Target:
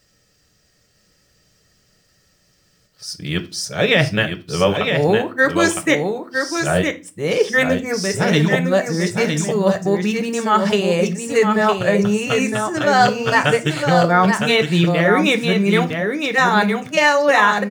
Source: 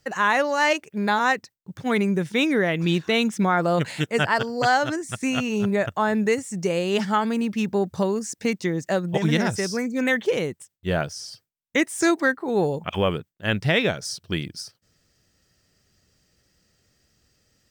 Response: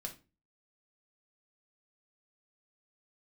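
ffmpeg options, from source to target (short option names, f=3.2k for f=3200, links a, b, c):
-filter_complex "[0:a]areverse,aecho=1:1:960:0.531,asplit=2[a][b];[1:a]atrim=start_sample=2205,lowshelf=f=240:g=-7.5[c];[b][c]afir=irnorm=-1:irlink=0,volume=4dB[d];[a][d]amix=inputs=2:normalize=0"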